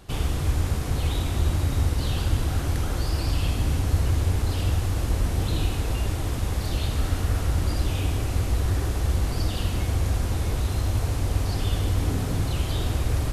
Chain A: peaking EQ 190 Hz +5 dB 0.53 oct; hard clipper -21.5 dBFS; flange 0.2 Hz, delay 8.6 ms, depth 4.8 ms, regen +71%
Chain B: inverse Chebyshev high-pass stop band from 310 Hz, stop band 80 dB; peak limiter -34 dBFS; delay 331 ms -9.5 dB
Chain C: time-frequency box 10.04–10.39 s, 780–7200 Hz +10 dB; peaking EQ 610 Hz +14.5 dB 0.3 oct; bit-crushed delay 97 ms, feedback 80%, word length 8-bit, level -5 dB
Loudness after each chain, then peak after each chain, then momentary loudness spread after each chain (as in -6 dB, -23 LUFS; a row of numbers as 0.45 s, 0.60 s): -32.0 LUFS, -40.5 LUFS, -23.0 LUFS; -22.0 dBFS, -31.5 dBFS, -6.5 dBFS; 2 LU, 1 LU, 5 LU